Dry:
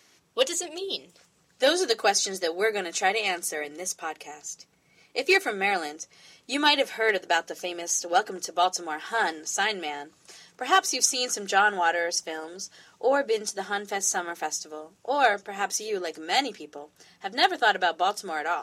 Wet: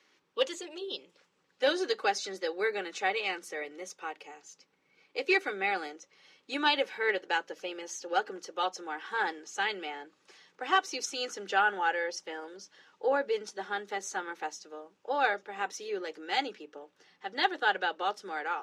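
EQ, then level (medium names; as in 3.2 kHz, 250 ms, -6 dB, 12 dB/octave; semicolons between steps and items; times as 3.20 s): Butterworth band-stop 680 Hz, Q 5.9; three-band isolator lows -16 dB, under 220 Hz, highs -13 dB, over 4.7 kHz; treble shelf 7.8 kHz -5.5 dB; -4.5 dB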